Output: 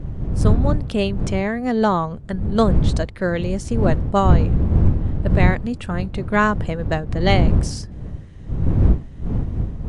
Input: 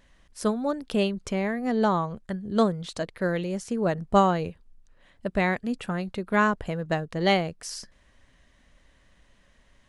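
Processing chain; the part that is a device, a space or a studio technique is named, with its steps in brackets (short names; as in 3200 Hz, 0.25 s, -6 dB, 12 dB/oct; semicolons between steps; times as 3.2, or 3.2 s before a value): smartphone video outdoors (wind noise 110 Hz -22 dBFS; AGC gain up to 5.5 dB; AAC 96 kbps 22050 Hz)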